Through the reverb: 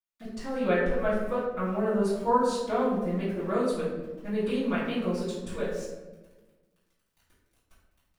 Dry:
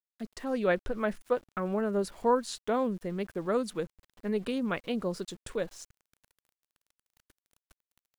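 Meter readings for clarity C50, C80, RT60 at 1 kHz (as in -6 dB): 1.5 dB, 4.5 dB, 1.0 s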